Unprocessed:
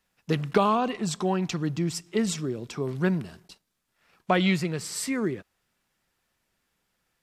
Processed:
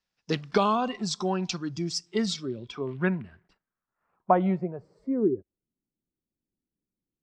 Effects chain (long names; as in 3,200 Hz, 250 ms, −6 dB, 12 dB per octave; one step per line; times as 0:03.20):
noise reduction from a noise print of the clip's start 10 dB
low-pass filter sweep 5,300 Hz → 300 Hz, 0:02.15–0:05.68
level −1.5 dB